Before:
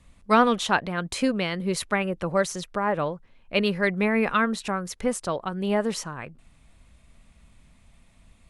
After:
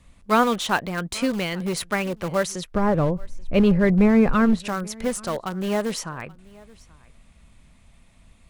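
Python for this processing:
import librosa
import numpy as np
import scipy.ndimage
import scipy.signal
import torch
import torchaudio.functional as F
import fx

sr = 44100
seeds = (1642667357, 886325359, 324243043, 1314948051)

p1 = (np.mod(10.0 ** (23.5 / 20.0) * x + 1.0, 2.0) - 1.0) / 10.0 ** (23.5 / 20.0)
p2 = x + (p1 * 10.0 ** (-11.0 / 20.0))
p3 = fx.tilt_eq(p2, sr, slope=-4.0, at=(2.74, 4.6))
y = p3 + 10.0 ** (-24.0 / 20.0) * np.pad(p3, (int(831 * sr / 1000.0), 0))[:len(p3)]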